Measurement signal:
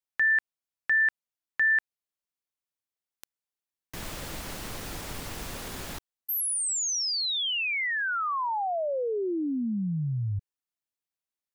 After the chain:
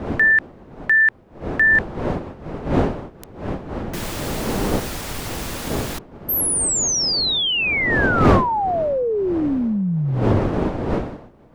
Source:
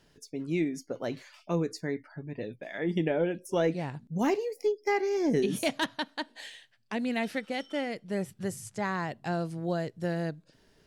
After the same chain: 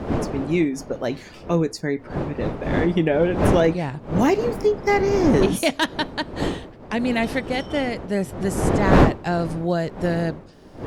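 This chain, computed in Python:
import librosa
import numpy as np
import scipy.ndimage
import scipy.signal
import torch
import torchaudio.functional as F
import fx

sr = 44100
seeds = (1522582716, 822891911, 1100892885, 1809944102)

y = fx.dmg_wind(x, sr, seeds[0], corner_hz=450.0, level_db=-33.0)
y = np.clip(y, -10.0 ** (-16.5 / 20.0), 10.0 ** (-16.5 / 20.0))
y = y * 10.0 ** (8.5 / 20.0)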